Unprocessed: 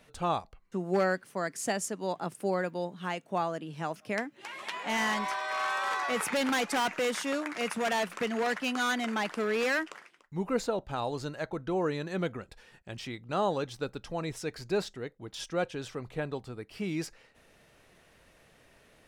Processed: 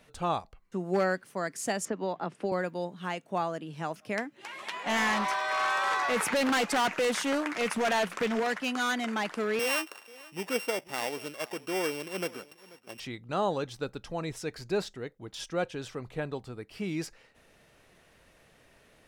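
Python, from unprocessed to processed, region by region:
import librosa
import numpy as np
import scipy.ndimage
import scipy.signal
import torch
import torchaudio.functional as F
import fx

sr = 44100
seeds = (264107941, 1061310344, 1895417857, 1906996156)

y = fx.chain(x, sr, fx.bandpass_edges(low_hz=140.0, high_hz=3400.0),
    fx.band_squash(depth_pct=100), at=(1.85, 2.52))
y = fx.chain(y, sr, fx.leveller(passes=1),
    fx.doppler_dist(depth_ms=0.28), at=(4.86, 8.4))
y = fx.chain(y, sr, fx.sample_sort(block=16),
    fx.highpass(hz=290.0, slope=12),
    fx.echo_single(ms=486, db=-20.5), at=(9.59, 13.0))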